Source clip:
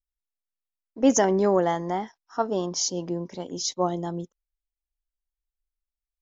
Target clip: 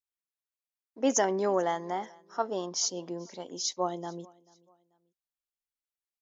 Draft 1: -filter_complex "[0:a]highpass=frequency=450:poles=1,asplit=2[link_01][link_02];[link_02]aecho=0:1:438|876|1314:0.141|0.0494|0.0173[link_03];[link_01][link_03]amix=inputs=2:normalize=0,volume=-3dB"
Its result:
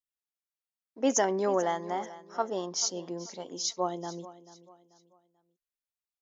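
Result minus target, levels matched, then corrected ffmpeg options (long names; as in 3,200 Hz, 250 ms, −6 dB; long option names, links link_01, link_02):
echo-to-direct +8.5 dB
-filter_complex "[0:a]highpass=frequency=450:poles=1,asplit=2[link_01][link_02];[link_02]aecho=0:1:438|876:0.0531|0.0186[link_03];[link_01][link_03]amix=inputs=2:normalize=0,volume=-3dB"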